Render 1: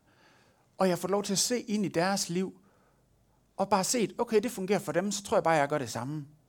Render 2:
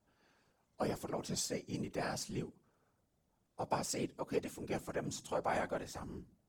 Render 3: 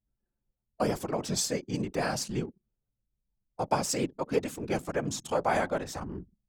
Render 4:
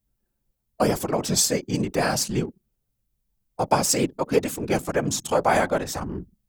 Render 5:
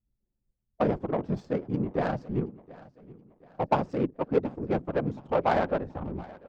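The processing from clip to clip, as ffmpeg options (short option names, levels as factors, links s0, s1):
-af "afftfilt=real='hypot(re,im)*cos(2*PI*random(0))':imag='hypot(re,im)*sin(2*PI*random(1))':win_size=512:overlap=0.75,volume=0.596"
-af "anlmdn=0.001,volume=2.66"
-af "highshelf=f=10000:g=9.5,volume=2.24"
-af "lowpass=6000,adynamicsmooth=sensitivity=0.5:basefreq=610,aecho=1:1:725|1450|2175:0.0944|0.0387|0.0159,volume=0.668"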